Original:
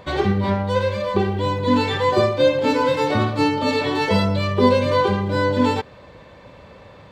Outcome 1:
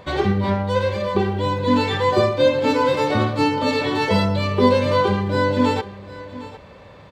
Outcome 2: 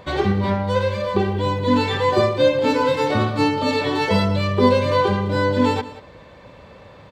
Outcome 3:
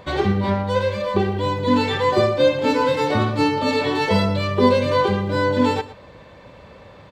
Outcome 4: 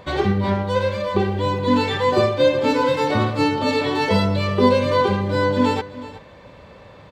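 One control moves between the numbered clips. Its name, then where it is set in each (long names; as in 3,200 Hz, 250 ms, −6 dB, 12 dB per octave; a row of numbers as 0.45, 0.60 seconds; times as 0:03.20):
single-tap delay, delay time: 758, 186, 118, 373 milliseconds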